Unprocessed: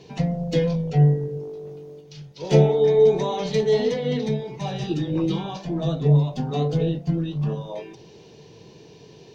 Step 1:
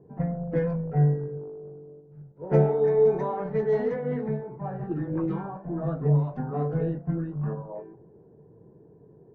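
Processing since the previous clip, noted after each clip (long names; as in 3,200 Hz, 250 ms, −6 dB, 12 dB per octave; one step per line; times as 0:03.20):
low-pass that shuts in the quiet parts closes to 460 Hz, open at −13.5 dBFS
high shelf with overshoot 2,300 Hz −14 dB, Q 3
level −5 dB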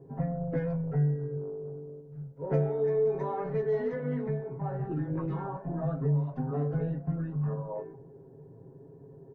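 comb filter 7.4 ms, depth 80%
downward compressor 2 to 1, threshold −32 dBFS, peak gain reduction 11.5 dB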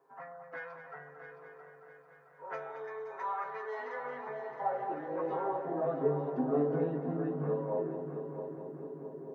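high-pass filter sweep 1,200 Hz → 300 Hz, 0:03.44–0:06.44
echo machine with several playback heads 222 ms, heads first and third, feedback 62%, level −10.5 dB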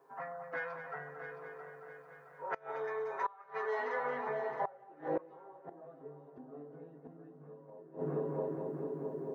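gate with flip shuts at −28 dBFS, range −24 dB
level +4 dB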